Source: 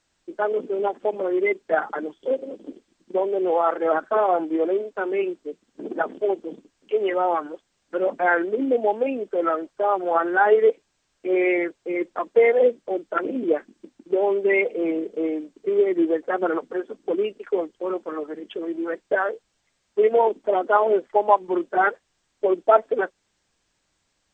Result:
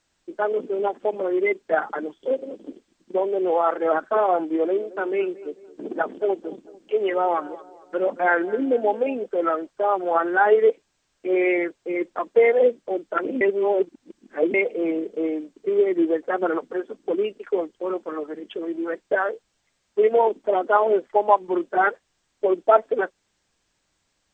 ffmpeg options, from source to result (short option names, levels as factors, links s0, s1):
-filter_complex "[0:a]asettb=1/sr,asplit=3[s0][s1][s2];[s0]atrim=end=4.474[s3];[s1]atrim=start=4.47:end=9.26,asetpts=PTS-STARTPTS,afade=t=in:d=0.004:c=qsin,afade=t=out:st=4.786:d=0.004:c=qsin,asplit=2[s4][s5];[s5]adelay=222,lowpass=f=1400:p=1,volume=0.126,asplit=2[s6][s7];[s7]adelay=222,lowpass=f=1400:p=1,volume=0.49,asplit=2[s8][s9];[s9]adelay=222,lowpass=f=1400:p=1,volume=0.49,asplit=2[s10][s11];[s11]adelay=222,lowpass=f=1400:p=1,volume=0.49[s12];[s4][s6][s8][s10][s12]amix=inputs=5:normalize=0,atrim=end_sample=211239[s13];[s2]atrim=start=9.256[s14];[s3][s13]acrossfade=d=0.004:c1=hsin:c2=qsin[s15];[s15][s14]acrossfade=d=0.004:c1=qsin:c2=hsin,asplit=3[s16][s17][s18];[s16]atrim=end=13.412[s19];[s17]atrim=start=13.408:end=14.542,asetpts=PTS-STARTPTS,areverse[s20];[s18]atrim=start=14.538[s21];[s19][s20]acrossfade=d=0.004:c1=hsin:c2=hsin[s22];[s22][s21]acrossfade=d=0.004:c1=hsin:c2=hsin"